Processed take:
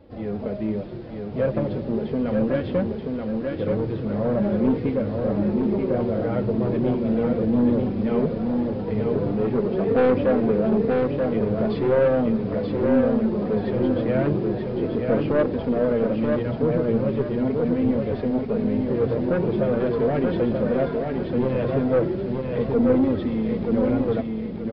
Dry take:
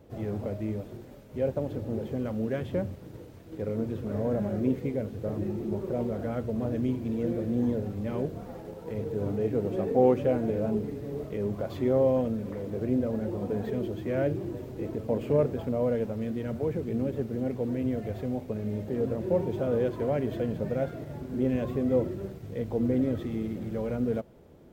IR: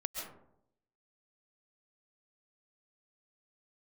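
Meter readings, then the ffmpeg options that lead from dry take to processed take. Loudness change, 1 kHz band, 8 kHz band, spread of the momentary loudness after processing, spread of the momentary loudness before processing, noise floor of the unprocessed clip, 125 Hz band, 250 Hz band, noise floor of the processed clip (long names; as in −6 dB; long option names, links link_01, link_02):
+7.0 dB, +7.5 dB, can't be measured, 6 LU, 9 LU, −47 dBFS, +5.5 dB, +8.0 dB, −31 dBFS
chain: -af "dynaudnorm=framelen=190:gausssize=5:maxgain=4dB,asoftclip=type=tanh:threshold=-19dB,flanger=delay=3.5:depth=3.1:regen=-27:speed=0.39:shape=triangular,aecho=1:1:931|1862|2793|3724:0.631|0.215|0.0729|0.0248,aresample=11025,aresample=44100,volume=7.5dB"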